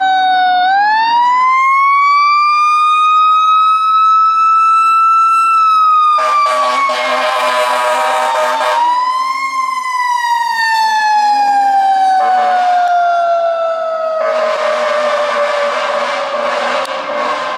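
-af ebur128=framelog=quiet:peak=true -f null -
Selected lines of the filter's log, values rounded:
Integrated loudness:
  I:         -11.0 LUFS
  Threshold: -21.0 LUFS
Loudness range:
  LRA:         5.5 LU
  Threshold: -30.9 LUFS
  LRA low:   -14.0 LUFS
  LRA high:   -8.5 LUFS
True peak:
  Peak:       -2.7 dBFS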